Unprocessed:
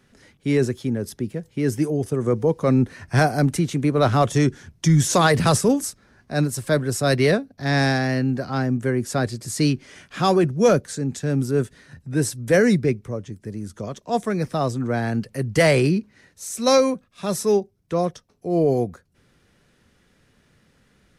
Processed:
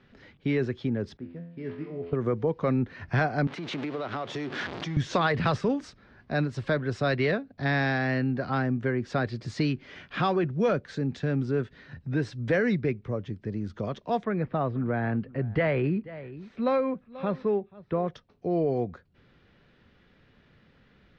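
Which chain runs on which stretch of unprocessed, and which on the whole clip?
0:01.17–0:02.13: de-essing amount 70% + tuned comb filter 85 Hz, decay 0.74 s, mix 90% + linearly interpolated sample-rate reduction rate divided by 6×
0:03.47–0:04.97: converter with a step at zero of −23.5 dBFS + high-pass filter 250 Hz + downward compressor 20 to 1, threshold −28 dBFS
0:14.24–0:18.08: one scale factor per block 7 bits + high-frequency loss of the air 450 metres + single-tap delay 484 ms −22.5 dB
whole clip: low-pass filter 4,000 Hz 24 dB per octave; dynamic equaliser 1,700 Hz, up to +4 dB, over −35 dBFS, Q 0.71; downward compressor 2.5 to 1, threshold −26 dBFS

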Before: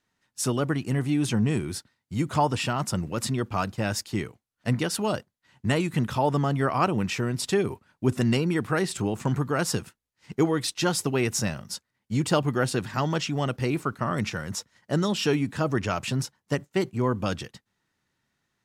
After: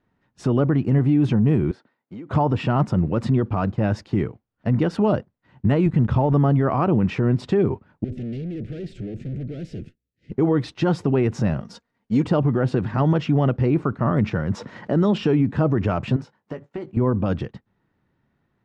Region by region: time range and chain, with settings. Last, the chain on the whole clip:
0:01.71–0:02.31: high-pass filter 360 Hz + high-shelf EQ 5,500 Hz −10 dB + downward compressor 16 to 1, threshold −42 dBFS
0:05.86–0:06.33: mu-law and A-law mismatch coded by A + low-shelf EQ 110 Hz +11.5 dB
0:08.04–0:10.32: tube saturation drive 38 dB, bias 0.6 + Butterworth band-reject 1,000 Hz, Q 0.6
0:11.60–0:12.25: de-essing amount 70% + bass and treble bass −7 dB, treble +8 dB + comb filter 4.3 ms, depth 41%
0:14.55–0:15.18: high-pass filter 160 Hz + envelope flattener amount 50%
0:16.16–0:16.97: high-pass filter 370 Hz 6 dB per octave + downward compressor 5 to 1, threshold −37 dBFS + double-tracking delay 19 ms −9 dB
whole clip: low-pass filter 3,200 Hz 12 dB per octave; tilt shelving filter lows +7.5 dB, about 1,200 Hz; brickwall limiter −15 dBFS; level +4 dB

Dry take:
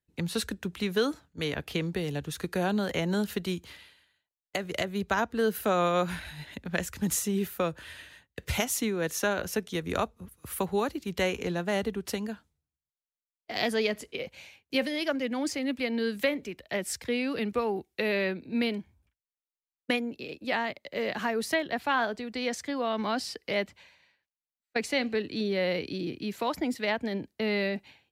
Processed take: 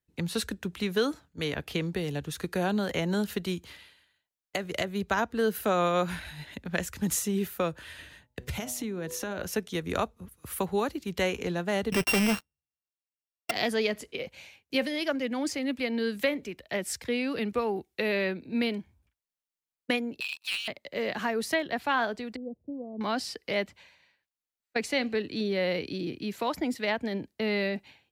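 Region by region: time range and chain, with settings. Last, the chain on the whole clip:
0:07.98–0:09.40: low-shelf EQ 400 Hz +7.5 dB + hum removal 123.6 Hz, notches 9 + downward compressor 5 to 1, threshold −31 dBFS
0:11.92–0:13.51: samples sorted by size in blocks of 16 samples + low-shelf EQ 480 Hz −4 dB + leveller curve on the samples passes 5
0:20.20–0:20.68: linear-phase brick-wall high-pass 2,300 Hz + leveller curve on the samples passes 3
0:22.36–0:23.01: Gaussian smoothing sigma 18 samples + expander for the loud parts, over −45 dBFS
whole clip: no processing

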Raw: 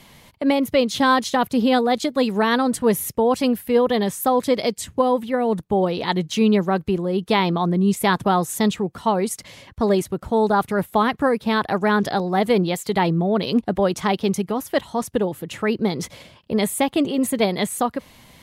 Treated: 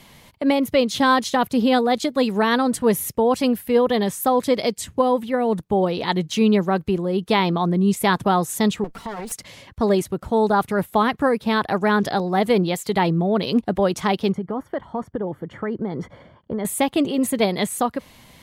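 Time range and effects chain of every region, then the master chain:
0:08.84–0:09.32: lower of the sound and its delayed copy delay 4.4 ms + downward compressor, threshold −27 dBFS
0:14.32–0:16.65: Savitzky-Golay smoothing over 41 samples + downward compressor 5 to 1, threshold −21 dBFS
whole clip: no processing

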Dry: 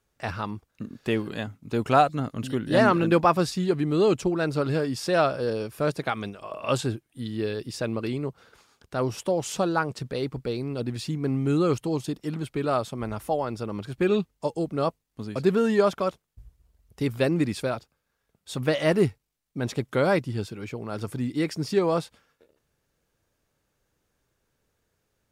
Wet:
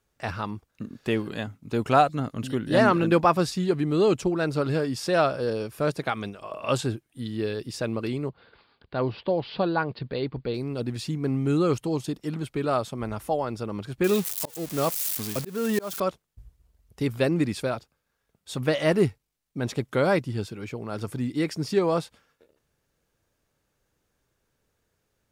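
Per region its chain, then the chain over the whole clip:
0:08.29–0:10.54: Butterworth low-pass 4,700 Hz 96 dB per octave + notch filter 1,300 Hz, Q 14
0:14.04–0:16.00: spike at every zero crossing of −20.5 dBFS + volume swells 305 ms
whole clip: no processing

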